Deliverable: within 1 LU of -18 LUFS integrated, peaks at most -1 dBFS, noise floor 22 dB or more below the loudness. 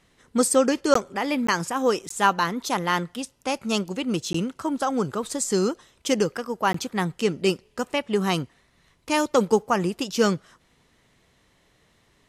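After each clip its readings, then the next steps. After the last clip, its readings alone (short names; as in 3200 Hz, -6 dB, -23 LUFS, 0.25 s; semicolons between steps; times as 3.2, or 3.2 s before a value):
dropouts 5; longest dropout 14 ms; loudness -24.5 LUFS; peak -4.5 dBFS; loudness target -18.0 LUFS
-> interpolate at 0.94/1.47/2.09/4.33/6.73, 14 ms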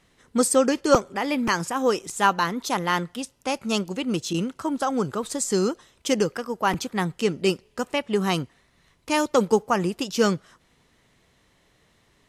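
dropouts 0; loudness -24.5 LUFS; peak -3.0 dBFS; loudness target -18.0 LUFS
-> gain +6.5 dB; limiter -1 dBFS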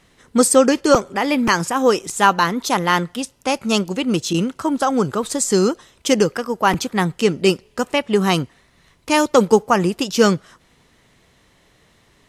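loudness -18.0 LUFS; peak -1.0 dBFS; noise floor -57 dBFS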